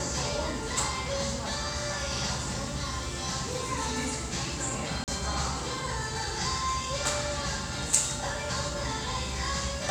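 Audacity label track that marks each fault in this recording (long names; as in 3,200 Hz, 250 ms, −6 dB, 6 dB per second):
5.040000	5.080000	drop-out 38 ms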